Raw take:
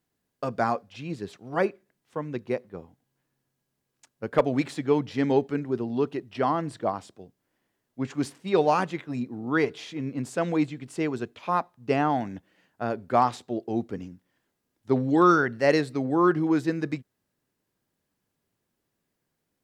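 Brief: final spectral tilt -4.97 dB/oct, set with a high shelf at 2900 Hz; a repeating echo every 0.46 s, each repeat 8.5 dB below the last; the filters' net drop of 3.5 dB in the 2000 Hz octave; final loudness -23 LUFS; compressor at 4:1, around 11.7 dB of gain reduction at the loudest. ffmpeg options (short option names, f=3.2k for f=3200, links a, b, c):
-af "equalizer=f=2k:t=o:g=-3.5,highshelf=f=2.9k:g=-4,acompressor=threshold=-30dB:ratio=4,aecho=1:1:460|920|1380|1840:0.376|0.143|0.0543|0.0206,volume=12dB"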